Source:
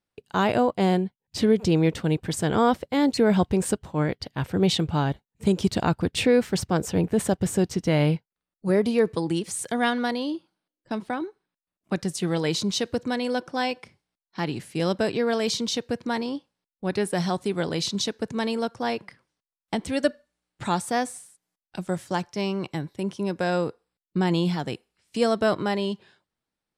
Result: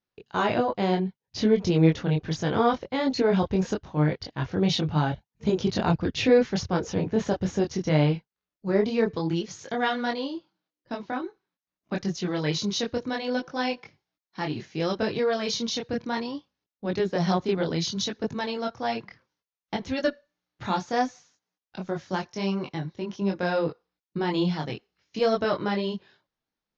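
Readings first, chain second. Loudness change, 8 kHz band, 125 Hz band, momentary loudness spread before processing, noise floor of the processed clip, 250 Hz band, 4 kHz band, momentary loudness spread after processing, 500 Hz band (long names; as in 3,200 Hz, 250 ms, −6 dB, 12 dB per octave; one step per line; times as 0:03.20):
−1.5 dB, −6.0 dB, −0.5 dB, 10 LU, below −85 dBFS, −2.0 dB, −1.5 dB, 11 LU, −1.0 dB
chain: multi-voice chorus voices 4, 0.65 Hz, delay 23 ms, depth 4.1 ms
Chebyshev low-pass filter 6,700 Hz, order 8
harmonic generator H 4 −34 dB, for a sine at −9 dBFS
level +2 dB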